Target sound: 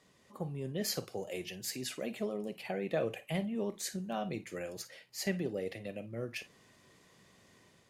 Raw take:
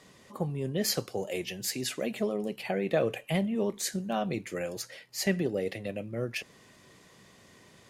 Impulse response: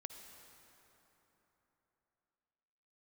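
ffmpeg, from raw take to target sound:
-filter_complex "[0:a]dynaudnorm=f=140:g=5:m=4dB[a];[1:a]atrim=start_sample=2205,atrim=end_sample=3528,asetrate=57330,aresample=44100[b];[a][b]afir=irnorm=-1:irlink=0,volume=-2.5dB"

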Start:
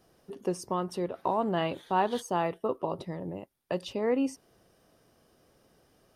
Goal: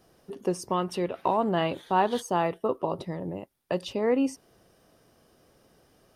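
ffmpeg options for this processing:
-filter_complex "[0:a]asettb=1/sr,asplit=3[a][b][c];[a]atrim=end=0.694[d];[b]atrim=start=0.69:end=1.37,asetpts=PTS-STARTPTS,afade=t=in:d=0.004:c=qsin,afade=t=out:st=0.676:d=0.004:c=qsin,equalizer=f=2.6k:w=1.5:g=8[e];[c]atrim=start=1.366[f];[d][e]acrossfade=d=0.004:c1=hsin:c2=qsin[g];[g][f]acrossfade=d=0.004:c1=qsin:c2=hsin,volume=3dB"

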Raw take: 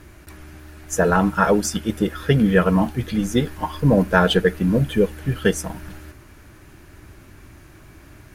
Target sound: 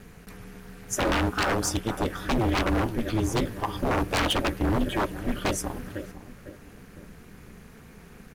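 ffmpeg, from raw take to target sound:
-filter_complex "[0:a]asplit=2[a][b];[b]adelay=503,lowpass=f=1.6k:p=1,volume=-15.5dB,asplit=2[c][d];[d]adelay=503,lowpass=f=1.6k:p=1,volume=0.42,asplit=2[e][f];[f]adelay=503,lowpass=f=1.6k:p=1,volume=0.42,asplit=2[g][h];[h]adelay=503,lowpass=f=1.6k:p=1,volume=0.42[i];[a][c][e][g][i]amix=inputs=5:normalize=0,aeval=exprs='0.158*(abs(mod(val(0)/0.158+3,4)-2)-1)':c=same,aeval=exprs='val(0)*sin(2*PI*110*n/s)':c=same"

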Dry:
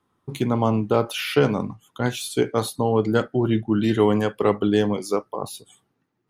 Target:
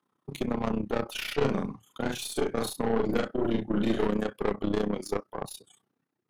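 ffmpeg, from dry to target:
-filter_complex "[0:a]highpass=f=130:w=0.5412,highpass=f=130:w=1.3066,aeval=exprs='(tanh(8.91*val(0)+0.6)-tanh(0.6))/8.91':c=same,tremolo=f=31:d=0.824,asettb=1/sr,asplit=3[a][b][c];[a]atrim=end=1.364[d];[b]atrim=start=1.36:end=4.07,asetpts=PTS-STARTPTS,afade=t=in:d=0.004:c=qsin,afade=t=out:st=2.706:d=0.004:c=qsin,asplit=2[e][f];[f]adelay=44,volume=-3.5dB[g];[e][g]amix=inputs=2:normalize=0,atrim=end_sample=119511[h];[c]atrim=start=4.066[i];[d][h]acrossfade=d=0.004:c1=hsin:c2=qsin[j];[j][i]acrossfade=d=0.004:c1=qsin:c2=hsin"

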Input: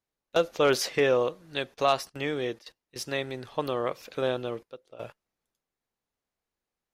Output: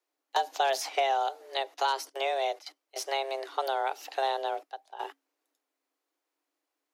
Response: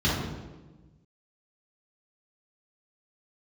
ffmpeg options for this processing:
-filter_complex "[0:a]afreqshift=270,acrossover=split=860|2700[a][b][c];[a]acompressor=threshold=-29dB:ratio=4[d];[b]acompressor=threshold=-41dB:ratio=4[e];[c]acompressor=threshold=-38dB:ratio=4[f];[d][e][f]amix=inputs=3:normalize=0,volume=3dB"

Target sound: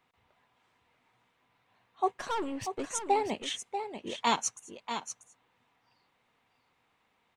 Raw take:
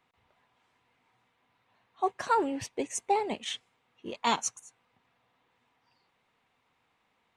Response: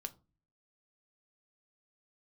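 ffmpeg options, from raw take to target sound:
-filter_complex "[0:a]asettb=1/sr,asplit=3[a][b][c];[a]atrim=end=2.144[d];[b]atrim=start=2.14:end=2.89,asetpts=PTS-STARTPTS,afade=t=in:d=0.004:c=qsin,afade=t=out:st=0.746:d=0.004:c=qsin,aeval=exprs='(tanh(28.2*val(0)+0.45)-tanh(0.45))/28.2':c=same[e];[c]atrim=start=2.886[f];[d][e]acrossfade=d=0.004:c1=hsin:c2=qsin[g];[g][f]acrossfade=d=0.004:c1=qsin:c2=hsin,asplit=2[h][i];[i]aecho=0:1:639:0.376[j];[h][j]amix=inputs=2:normalize=0"

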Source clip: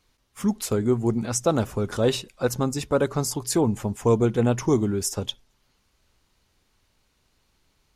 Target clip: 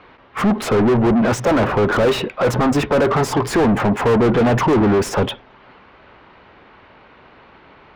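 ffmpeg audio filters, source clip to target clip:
-filter_complex "[0:a]acrossover=split=370|3100[a][b][c];[c]aeval=exprs='sgn(val(0))*max(abs(val(0))-0.00944,0)':c=same[d];[a][b][d]amix=inputs=3:normalize=0,asplit=2[e][f];[f]highpass=f=720:p=1,volume=39dB,asoftclip=type=tanh:threshold=-7dB[g];[e][g]amix=inputs=2:normalize=0,lowpass=f=1.1k:p=1,volume=-6dB"

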